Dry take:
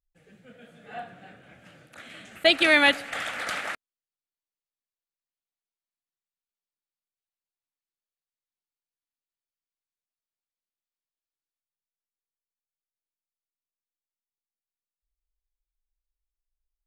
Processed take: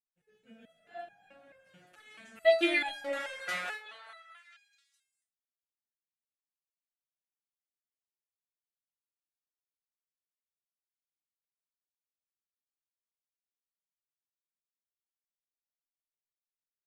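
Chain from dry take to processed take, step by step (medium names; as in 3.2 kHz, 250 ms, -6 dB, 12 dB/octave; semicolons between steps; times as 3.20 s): expander -52 dBFS; repeats whose band climbs or falls 207 ms, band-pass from 480 Hz, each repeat 0.7 oct, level -6 dB; resonator arpeggio 4.6 Hz 180–820 Hz; trim +5.5 dB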